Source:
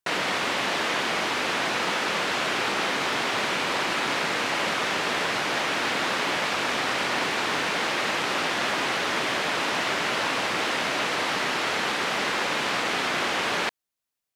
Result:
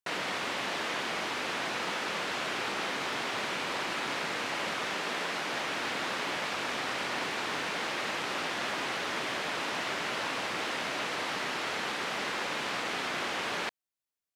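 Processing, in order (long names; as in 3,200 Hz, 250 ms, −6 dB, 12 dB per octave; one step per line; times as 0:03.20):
0:04.94–0:05.53: high-pass filter 140 Hz 24 dB per octave
level −7.5 dB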